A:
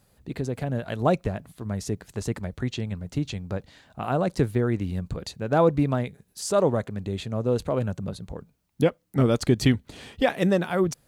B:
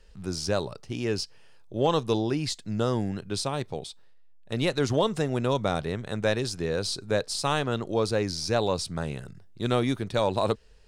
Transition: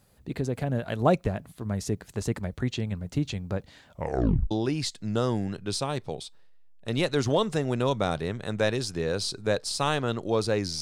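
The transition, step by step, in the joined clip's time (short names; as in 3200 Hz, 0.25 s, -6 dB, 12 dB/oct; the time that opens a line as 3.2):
A
3.87 tape stop 0.64 s
4.51 switch to B from 2.15 s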